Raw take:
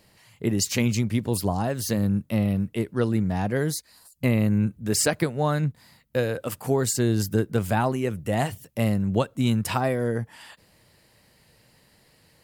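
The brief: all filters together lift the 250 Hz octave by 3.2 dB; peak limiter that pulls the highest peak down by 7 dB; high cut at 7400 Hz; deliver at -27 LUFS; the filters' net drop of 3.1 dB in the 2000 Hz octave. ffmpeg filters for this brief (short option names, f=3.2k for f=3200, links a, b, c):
-af "lowpass=7.4k,equalizer=f=250:t=o:g=4,equalizer=f=2k:t=o:g=-4,volume=-1.5dB,alimiter=limit=-15.5dB:level=0:latency=1"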